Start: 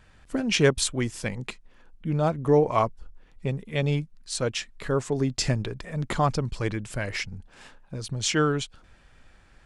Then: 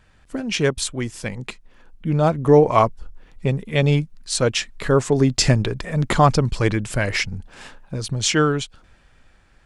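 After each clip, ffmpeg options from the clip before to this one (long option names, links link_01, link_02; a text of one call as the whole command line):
ffmpeg -i in.wav -af "dynaudnorm=framelen=250:gausssize=13:maxgain=11.5dB" out.wav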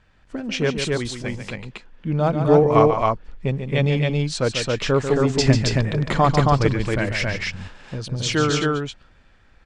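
ffmpeg -i in.wav -filter_complex "[0:a]lowpass=5600,asplit=2[link_01][link_02];[link_02]aecho=0:1:142.9|271.1:0.398|0.794[link_03];[link_01][link_03]amix=inputs=2:normalize=0,volume=-2.5dB" out.wav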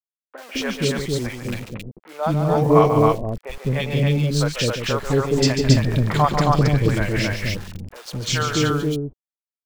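ffmpeg -i in.wav -filter_complex "[0:a]aeval=exprs='val(0)*gte(abs(val(0)),0.0178)':channel_layout=same,acrossover=split=530|2100[link_01][link_02][link_03];[link_03]adelay=40[link_04];[link_01]adelay=210[link_05];[link_05][link_02][link_04]amix=inputs=3:normalize=0,volume=1.5dB" out.wav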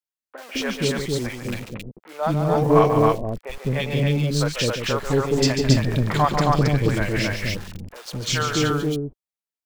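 ffmpeg -i in.wav -filter_complex "[0:a]equalizer=frequency=66:width_type=o:width=2.4:gain=-3,asplit=2[link_01][link_02];[link_02]aeval=exprs='clip(val(0),-1,0.0841)':channel_layout=same,volume=-6.5dB[link_03];[link_01][link_03]amix=inputs=2:normalize=0,volume=-3.5dB" out.wav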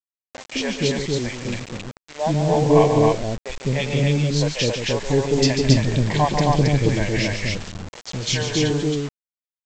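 ffmpeg -i in.wav -af "asuperstop=centerf=1300:order=4:qfactor=2,aresample=16000,acrusher=bits=5:mix=0:aa=0.000001,aresample=44100,volume=1.5dB" out.wav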